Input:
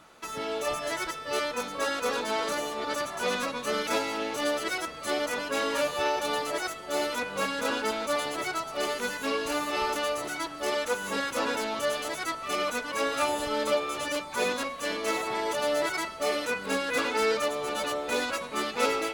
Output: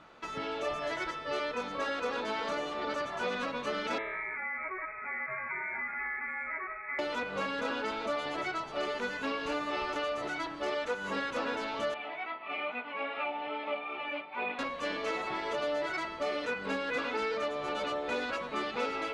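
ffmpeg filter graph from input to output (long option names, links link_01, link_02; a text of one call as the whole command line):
ffmpeg -i in.wav -filter_complex "[0:a]asettb=1/sr,asplit=3[link_01][link_02][link_03];[link_01]atrim=end=3.984[link_04];[link_02]atrim=start=3.98:end=6.99,asetpts=PTS-STARTPTS,afade=type=in:duration=0.004:curve=qsin,afade=type=out:start_time=3.006:duration=0.004:curve=qsin,acompressor=threshold=-32dB:ratio=4:attack=3.2:release=140:knee=1:detection=peak,lowpass=frequency=2200:width_type=q:width=0.5098,lowpass=frequency=2200:width_type=q:width=0.6013,lowpass=frequency=2200:width_type=q:width=0.9,lowpass=frequency=2200:width_type=q:width=2.563,afreqshift=-2600[link_05];[link_03]atrim=start=6.986[link_06];[link_04][link_05]acrossfade=duration=0.004:curve1=hsin:curve2=qsin[link_07];[link_07][link_06]acrossfade=duration=0.004:curve1=qsin:curve2=hsin,asettb=1/sr,asplit=3[link_08][link_09][link_10];[link_08]atrim=end=11.944[link_11];[link_09]atrim=start=11.94:end=14.59,asetpts=PTS-STARTPTS,afade=type=in:duration=0.004:curve=qsin,afade=type=out:start_time=2.646:duration=0.004:curve=qsin,flanger=delay=16:depth=2:speed=2.4,highpass=290,equalizer=frequency=330:width_type=q:width=4:gain=-6,equalizer=frequency=490:width_type=q:width=4:gain=-9,equalizer=frequency=790:width_type=q:width=4:gain=5,equalizer=frequency=1100:width_type=q:width=4:gain=-4,equalizer=frequency=1600:width_type=q:width=4:gain=-8,equalizer=frequency=2400:width_type=q:width=4:gain=6,lowpass=frequency=2900:width=0.5412,lowpass=frequency=2900:width=1.3066[link_12];[link_10]atrim=start=14.586[link_13];[link_11][link_12]acrossfade=duration=0.004:curve1=hsin:curve2=qsin[link_14];[link_14][link_13]acrossfade=duration=0.004:curve1=qsin:curve2=hsin,lowpass=3500,bandreject=frequency=109.9:width_type=h:width=4,bandreject=frequency=219.8:width_type=h:width=4,bandreject=frequency=329.7:width_type=h:width=4,bandreject=frequency=439.6:width_type=h:width=4,bandreject=frequency=549.5:width_type=h:width=4,bandreject=frequency=659.4:width_type=h:width=4,bandreject=frequency=769.3:width_type=h:width=4,bandreject=frequency=879.2:width_type=h:width=4,bandreject=frequency=989.1:width_type=h:width=4,bandreject=frequency=1099:width_type=h:width=4,bandreject=frequency=1208.9:width_type=h:width=4,bandreject=frequency=1318.8:width_type=h:width=4,bandreject=frequency=1428.7:width_type=h:width=4,bandreject=frequency=1538.6:width_type=h:width=4,bandreject=frequency=1648.5:width_type=h:width=4,bandreject=frequency=1758.4:width_type=h:width=4,bandreject=frequency=1868.3:width_type=h:width=4,bandreject=frequency=1978.2:width_type=h:width=4,bandreject=frequency=2088.1:width_type=h:width=4,bandreject=frequency=2198:width_type=h:width=4,bandreject=frequency=2307.9:width_type=h:width=4,bandreject=frequency=2417.8:width_type=h:width=4,bandreject=frequency=2527.7:width_type=h:width=4,bandreject=frequency=2637.6:width_type=h:width=4,bandreject=frequency=2747.5:width_type=h:width=4,bandreject=frequency=2857.4:width_type=h:width=4,bandreject=frequency=2967.3:width_type=h:width=4,bandreject=frequency=3077.2:width_type=h:width=4,bandreject=frequency=3187.1:width_type=h:width=4,bandreject=frequency=3297:width_type=h:width=4,bandreject=frequency=3406.9:width_type=h:width=4,bandreject=frequency=3516.8:width_type=h:width=4,bandreject=frequency=3626.7:width_type=h:width=4,bandreject=frequency=3736.6:width_type=h:width=4,bandreject=frequency=3846.5:width_type=h:width=4,bandreject=frequency=3956.4:width_type=h:width=4,bandreject=frequency=4066.3:width_type=h:width=4,bandreject=frequency=4176.2:width_type=h:width=4,acompressor=threshold=-31dB:ratio=3" out.wav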